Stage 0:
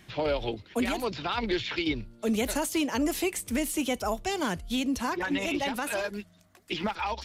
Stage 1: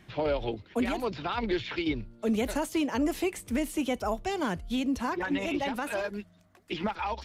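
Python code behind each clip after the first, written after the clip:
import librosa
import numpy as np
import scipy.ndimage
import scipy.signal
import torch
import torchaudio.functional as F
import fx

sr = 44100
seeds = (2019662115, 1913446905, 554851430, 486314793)

y = fx.high_shelf(x, sr, hz=3100.0, db=-9.0)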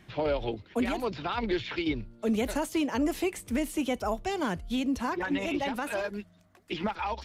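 y = x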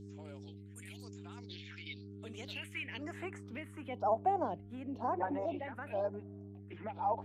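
y = fx.filter_sweep_bandpass(x, sr, from_hz=7800.0, to_hz=740.0, start_s=1.31, end_s=4.19, q=3.0)
y = fx.dmg_buzz(y, sr, base_hz=100.0, harmonics=4, level_db=-56.0, tilt_db=-2, odd_only=False)
y = fx.phaser_stages(y, sr, stages=4, low_hz=700.0, high_hz=4800.0, hz=1.0, feedback_pct=45)
y = y * librosa.db_to_amplitude(4.5)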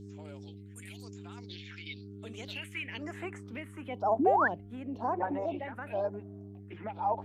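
y = fx.spec_paint(x, sr, seeds[0], shape='rise', start_s=4.19, length_s=0.29, low_hz=240.0, high_hz=1900.0, level_db=-29.0)
y = y * librosa.db_to_amplitude(3.0)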